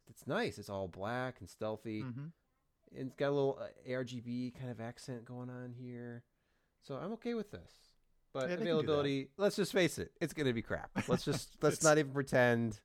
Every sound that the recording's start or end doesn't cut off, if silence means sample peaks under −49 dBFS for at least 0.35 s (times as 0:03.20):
0:02.95–0:06.20
0:06.86–0:07.63